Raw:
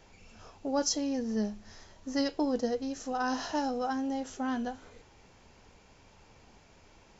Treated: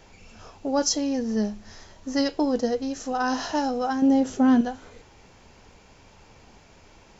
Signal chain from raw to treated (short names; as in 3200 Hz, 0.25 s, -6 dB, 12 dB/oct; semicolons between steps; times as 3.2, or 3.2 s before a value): 4.02–4.61 graphic EQ 125/250/500 Hz +9/+7/+5 dB; gain +6 dB